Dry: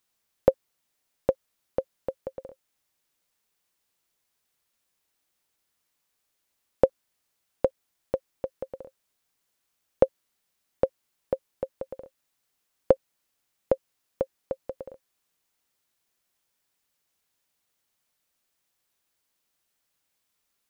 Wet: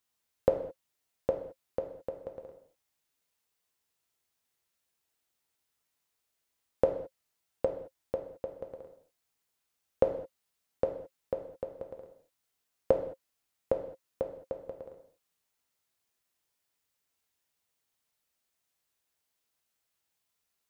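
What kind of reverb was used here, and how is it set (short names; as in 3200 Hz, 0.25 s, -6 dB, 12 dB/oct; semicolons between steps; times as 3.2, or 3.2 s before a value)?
non-linear reverb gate 0.24 s falling, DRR 3 dB; gain -6 dB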